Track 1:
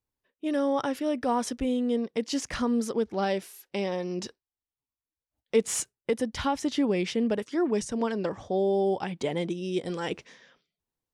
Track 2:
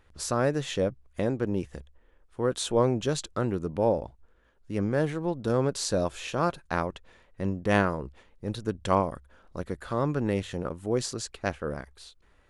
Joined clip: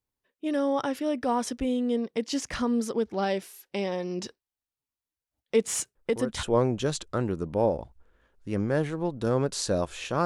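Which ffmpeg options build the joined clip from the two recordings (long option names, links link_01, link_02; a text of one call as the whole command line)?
ffmpeg -i cue0.wav -i cue1.wav -filter_complex "[1:a]asplit=2[link_01][link_02];[0:a]apad=whole_dur=10.25,atrim=end=10.25,atrim=end=6.432[link_03];[link_02]atrim=start=2.658:end=6.48[link_04];[link_01]atrim=start=2.18:end=2.66,asetpts=PTS-STARTPTS,volume=-7.5dB,afade=type=in:duration=0.004:curve=hsin,afade=type=out:start_time=0.476:duration=0.004:curve=hsin,adelay=5950[link_05];[link_03][link_04]acrossfade=duration=0.004:curve1=hsin:curve2=hsin[link_06];[link_06][link_05]amix=inputs=2:normalize=0" out.wav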